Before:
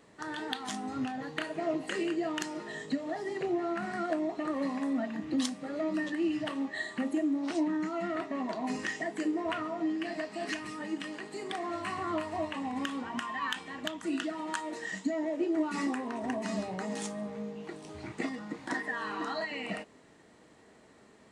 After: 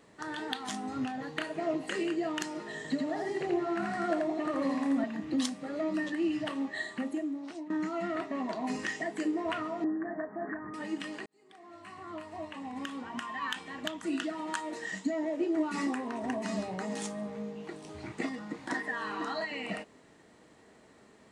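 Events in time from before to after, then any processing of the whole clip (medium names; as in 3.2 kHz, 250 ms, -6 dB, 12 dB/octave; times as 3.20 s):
2.76–5.04 s: delay 83 ms -3 dB
6.78–7.70 s: fade out, to -15.5 dB
9.84–10.74 s: steep low-pass 1.8 kHz 72 dB/octave
11.26–13.82 s: fade in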